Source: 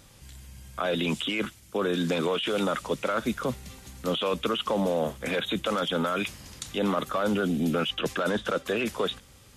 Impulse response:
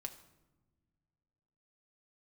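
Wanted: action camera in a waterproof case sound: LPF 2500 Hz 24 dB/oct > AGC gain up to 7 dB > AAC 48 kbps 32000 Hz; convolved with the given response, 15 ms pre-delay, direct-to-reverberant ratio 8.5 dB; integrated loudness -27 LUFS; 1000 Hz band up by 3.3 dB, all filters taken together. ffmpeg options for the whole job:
-filter_complex "[0:a]equalizer=f=1k:t=o:g=4.5,asplit=2[a][b];[1:a]atrim=start_sample=2205,adelay=15[c];[b][c]afir=irnorm=-1:irlink=0,volume=-5.5dB[d];[a][d]amix=inputs=2:normalize=0,lowpass=f=2.5k:w=0.5412,lowpass=f=2.5k:w=1.3066,dynaudnorm=m=7dB,volume=0.5dB" -ar 32000 -c:a aac -b:a 48k

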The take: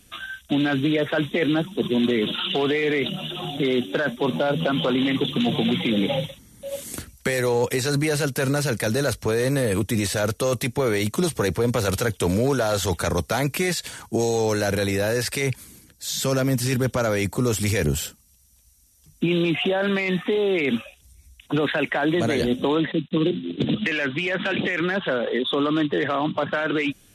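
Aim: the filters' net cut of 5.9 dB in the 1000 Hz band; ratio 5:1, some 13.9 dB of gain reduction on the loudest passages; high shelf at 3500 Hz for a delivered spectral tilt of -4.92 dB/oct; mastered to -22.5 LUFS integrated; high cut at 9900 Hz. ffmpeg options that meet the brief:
-af "lowpass=9.9k,equalizer=f=1k:t=o:g=-8,highshelf=f=3.5k:g=-7.5,acompressor=threshold=-35dB:ratio=5,volume=14.5dB"

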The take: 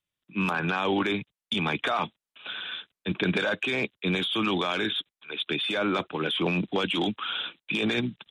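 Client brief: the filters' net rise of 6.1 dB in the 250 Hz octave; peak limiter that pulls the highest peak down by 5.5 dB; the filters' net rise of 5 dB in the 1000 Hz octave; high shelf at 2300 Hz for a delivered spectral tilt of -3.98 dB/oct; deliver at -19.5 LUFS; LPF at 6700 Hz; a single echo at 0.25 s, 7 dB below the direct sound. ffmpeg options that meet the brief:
-af "lowpass=6.7k,equalizer=f=250:t=o:g=8,equalizer=f=1k:t=o:g=7,highshelf=f=2.3k:g=-4.5,alimiter=limit=-15dB:level=0:latency=1,aecho=1:1:250:0.447,volume=6dB"

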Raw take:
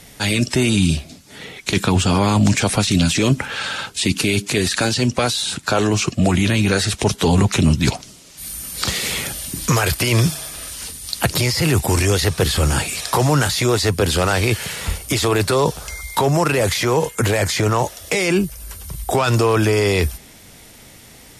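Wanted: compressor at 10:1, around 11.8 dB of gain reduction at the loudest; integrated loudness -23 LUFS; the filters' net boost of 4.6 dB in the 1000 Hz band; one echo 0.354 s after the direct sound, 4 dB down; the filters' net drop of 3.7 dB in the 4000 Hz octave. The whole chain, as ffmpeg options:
-af "equalizer=f=1k:t=o:g=6,equalizer=f=4k:t=o:g=-5,acompressor=threshold=-22dB:ratio=10,aecho=1:1:354:0.631,volume=2.5dB"

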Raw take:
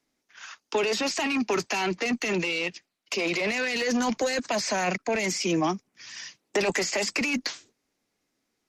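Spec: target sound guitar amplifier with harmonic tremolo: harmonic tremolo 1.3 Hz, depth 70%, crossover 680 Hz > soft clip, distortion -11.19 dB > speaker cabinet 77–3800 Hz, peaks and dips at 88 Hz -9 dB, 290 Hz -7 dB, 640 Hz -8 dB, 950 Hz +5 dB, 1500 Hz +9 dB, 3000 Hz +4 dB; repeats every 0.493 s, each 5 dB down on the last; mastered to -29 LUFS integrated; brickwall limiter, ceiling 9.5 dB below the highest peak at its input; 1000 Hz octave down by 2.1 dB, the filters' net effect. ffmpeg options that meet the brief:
-filter_complex "[0:a]equalizer=f=1k:t=o:g=-5,alimiter=level_in=1dB:limit=-24dB:level=0:latency=1,volume=-1dB,aecho=1:1:493|986|1479|1972|2465|2958|3451:0.562|0.315|0.176|0.0988|0.0553|0.031|0.0173,acrossover=split=680[a][b];[a]aeval=exprs='val(0)*(1-0.7/2+0.7/2*cos(2*PI*1.3*n/s))':c=same[c];[b]aeval=exprs='val(0)*(1-0.7/2-0.7/2*cos(2*PI*1.3*n/s))':c=same[d];[c][d]amix=inputs=2:normalize=0,asoftclip=threshold=-34.5dB,highpass=77,equalizer=f=88:t=q:w=4:g=-9,equalizer=f=290:t=q:w=4:g=-7,equalizer=f=640:t=q:w=4:g=-8,equalizer=f=950:t=q:w=4:g=5,equalizer=f=1.5k:t=q:w=4:g=9,equalizer=f=3k:t=q:w=4:g=4,lowpass=f=3.8k:w=0.5412,lowpass=f=3.8k:w=1.3066,volume=10dB"

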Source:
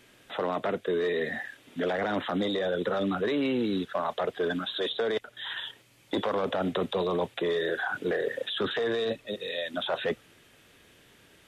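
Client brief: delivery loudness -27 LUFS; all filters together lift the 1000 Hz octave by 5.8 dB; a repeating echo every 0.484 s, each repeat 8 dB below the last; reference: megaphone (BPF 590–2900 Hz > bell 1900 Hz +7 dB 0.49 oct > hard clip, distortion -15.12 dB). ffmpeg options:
-af "highpass=590,lowpass=2.9k,equalizer=f=1k:t=o:g=8,equalizer=f=1.9k:t=o:w=0.49:g=7,aecho=1:1:484|968|1452|1936|2420:0.398|0.159|0.0637|0.0255|0.0102,asoftclip=type=hard:threshold=-22dB,volume=3dB"

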